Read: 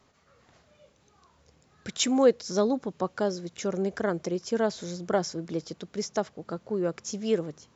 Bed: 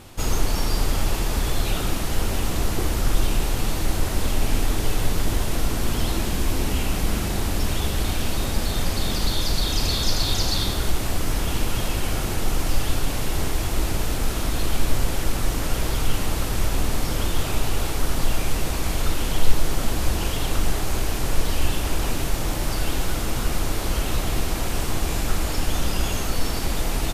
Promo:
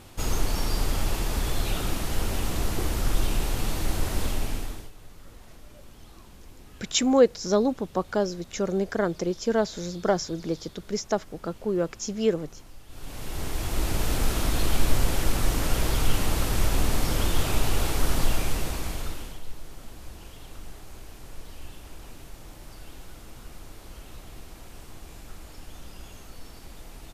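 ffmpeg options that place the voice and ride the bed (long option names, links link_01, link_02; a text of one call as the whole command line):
ffmpeg -i stem1.wav -i stem2.wav -filter_complex "[0:a]adelay=4950,volume=2.5dB[link_01];[1:a]volume=21dB,afade=type=out:start_time=4.22:duration=0.69:silence=0.0794328,afade=type=in:start_time=12.88:duration=1.27:silence=0.0562341,afade=type=out:start_time=18.16:duration=1.25:silence=0.112202[link_02];[link_01][link_02]amix=inputs=2:normalize=0" out.wav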